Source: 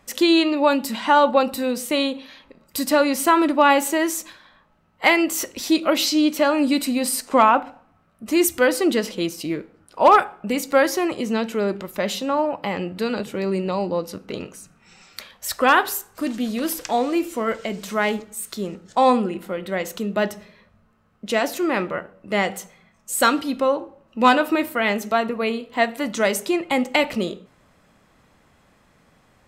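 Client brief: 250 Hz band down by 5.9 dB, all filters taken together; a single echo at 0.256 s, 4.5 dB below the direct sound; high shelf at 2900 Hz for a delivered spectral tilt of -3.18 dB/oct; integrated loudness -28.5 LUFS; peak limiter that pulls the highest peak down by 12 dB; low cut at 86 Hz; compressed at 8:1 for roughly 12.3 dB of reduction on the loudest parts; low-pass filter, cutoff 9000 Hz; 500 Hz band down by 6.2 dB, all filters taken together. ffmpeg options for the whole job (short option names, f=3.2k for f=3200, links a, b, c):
-af "highpass=86,lowpass=9k,equalizer=f=250:t=o:g=-5,equalizer=f=500:t=o:g=-7,highshelf=f=2.9k:g=8,acompressor=threshold=-23dB:ratio=8,alimiter=limit=-18dB:level=0:latency=1,aecho=1:1:256:0.596"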